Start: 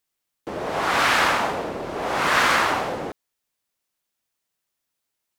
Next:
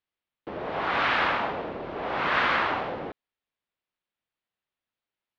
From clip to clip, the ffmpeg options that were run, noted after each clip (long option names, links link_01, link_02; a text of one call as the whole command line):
ffmpeg -i in.wav -af "lowpass=frequency=3700:width=0.5412,lowpass=frequency=3700:width=1.3066,volume=-5dB" out.wav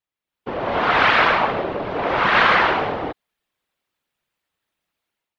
ffmpeg -i in.wav -af "dynaudnorm=framelen=110:gausssize=7:maxgain=11dB,afftfilt=real='hypot(re,im)*cos(2*PI*random(0))':imag='hypot(re,im)*sin(2*PI*random(1))':win_size=512:overlap=0.75,volume=5.5dB" out.wav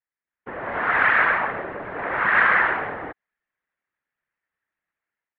ffmpeg -i in.wav -af "lowpass=frequency=1800:width_type=q:width=3.7,volume=-9dB" out.wav